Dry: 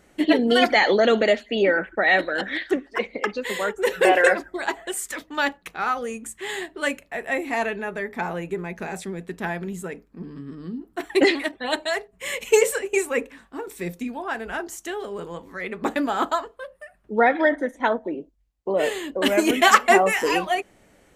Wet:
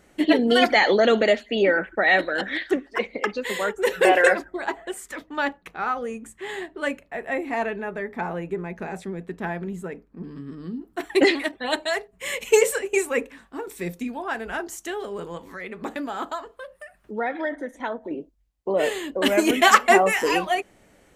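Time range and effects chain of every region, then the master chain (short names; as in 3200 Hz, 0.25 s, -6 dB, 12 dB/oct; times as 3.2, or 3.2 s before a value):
4.44–10.24 high shelf 2800 Hz -10.5 dB + hard clip -13 dBFS
15.37–18.11 compressor 1.5:1, threshold -38 dBFS + mismatched tape noise reduction encoder only
whole clip: dry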